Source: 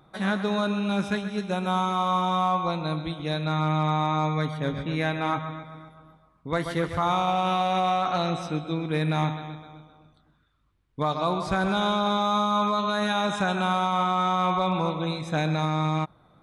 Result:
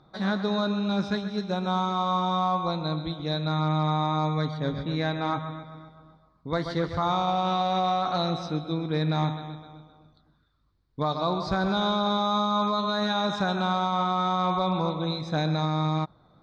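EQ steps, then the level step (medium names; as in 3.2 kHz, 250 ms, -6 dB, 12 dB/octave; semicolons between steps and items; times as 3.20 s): distance through air 220 m; resonant high shelf 3.5 kHz +7.5 dB, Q 3; 0.0 dB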